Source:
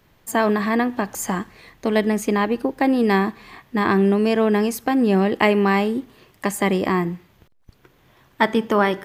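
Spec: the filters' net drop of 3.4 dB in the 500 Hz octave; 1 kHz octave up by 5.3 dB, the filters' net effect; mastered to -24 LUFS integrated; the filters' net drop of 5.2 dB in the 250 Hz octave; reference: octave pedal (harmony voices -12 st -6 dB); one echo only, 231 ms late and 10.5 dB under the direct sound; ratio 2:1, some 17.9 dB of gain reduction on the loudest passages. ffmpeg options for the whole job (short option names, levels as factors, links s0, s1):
-filter_complex "[0:a]equalizer=f=250:t=o:g=-6,equalizer=f=500:t=o:g=-4.5,equalizer=f=1000:t=o:g=8,acompressor=threshold=0.00631:ratio=2,aecho=1:1:231:0.299,asplit=2[s0][s1];[s1]asetrate=22050,aresample=44100,atempo=2,volume=0.501[s2];[s0][s2]amix=inputs=2:normalize=0,volume=3.55"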